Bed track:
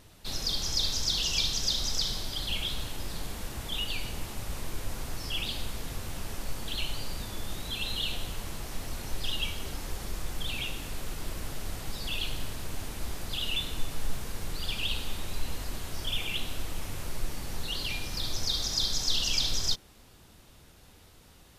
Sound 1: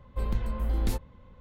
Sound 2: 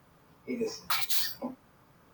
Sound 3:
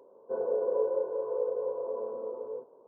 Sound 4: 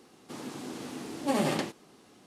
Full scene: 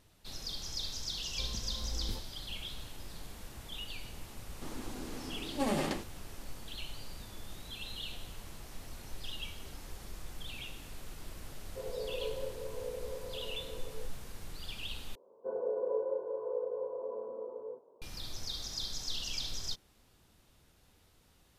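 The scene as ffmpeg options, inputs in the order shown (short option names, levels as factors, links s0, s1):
-filter_complex "[3:a]asplit=2[s0][s1];[0:a]volume=0.316,asplit=2[s2][s3];[s2]atrim=end=15.154[s4];[s1]atrim=end=2.87,asetpts=PTS-STARTPTS,volume=0.562[s5];[s3]atrim=start=18.016[s6];[1:a]atrim=end=1.4,asetpts=PTS-STARTPTS,volume=0.251,afade=t=in:d=0.004:c=hsin,afade=t=out:st=1.396:d=0.004:c=hsin,adelay=1220[s7];[4:a]atrim=end=2.26,asetpts=PTS-STARTPTS,volume=0.596,afade=t=in:d=0.004:c=hsin,afade=t=out:st=2.256:d=0.004:c=hsin,adelay=4320[s8];[s0]atrim=end=2.87,asetpts=PTS-STARTPTS,volume=0.299,afade=t=in:d=0.004:c=hsin,afade=t=out:st=2.866:d=0.004:c=hsin,adelay=505386S[s9];[s4][s5]acrossfade=d=0.004:c1=hsin:c2=hsin[s10];[s10][s6]acrossfade=d=0.004:c1=hsin:c2=hsin[s11];[s11][s7][s8][s9]amix=inputs=4:normalize=0"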